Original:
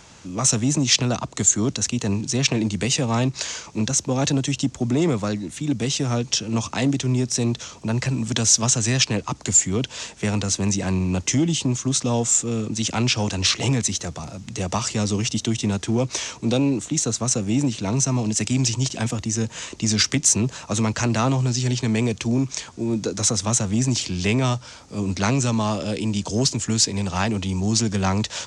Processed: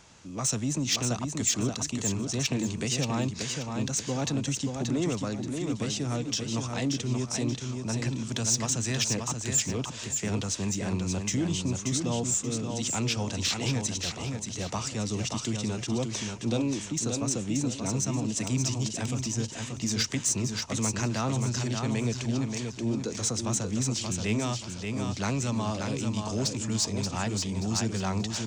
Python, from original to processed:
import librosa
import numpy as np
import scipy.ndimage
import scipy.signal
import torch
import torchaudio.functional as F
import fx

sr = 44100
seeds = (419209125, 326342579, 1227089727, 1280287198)

y = 10.0 ** (-9.5 / 20.0) * np.tanh(x / 10.0 ** (-9.5 / 20.0))
y = fx.echo_feedback(y, sr, ms=580, feedback_pct=33, wet_db=-5.0)
y = y * 10.0 ** (-8.0 / 20.0)